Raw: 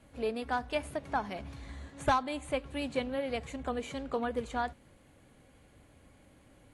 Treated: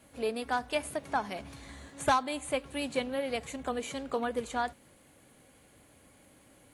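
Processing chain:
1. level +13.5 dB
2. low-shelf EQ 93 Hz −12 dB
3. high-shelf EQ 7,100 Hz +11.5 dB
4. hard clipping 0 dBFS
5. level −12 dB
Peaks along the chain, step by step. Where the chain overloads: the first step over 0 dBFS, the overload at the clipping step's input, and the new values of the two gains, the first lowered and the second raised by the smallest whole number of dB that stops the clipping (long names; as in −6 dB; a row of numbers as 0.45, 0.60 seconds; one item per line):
−3.5, −4.0, −3.5, −3.5, −15.5 dBFS
no step passes full scale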